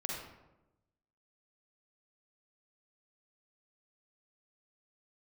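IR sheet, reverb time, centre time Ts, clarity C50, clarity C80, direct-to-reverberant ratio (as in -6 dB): 1.0 s, 64 ms, -1.0 dB, 3.0 dB, -2.5 dB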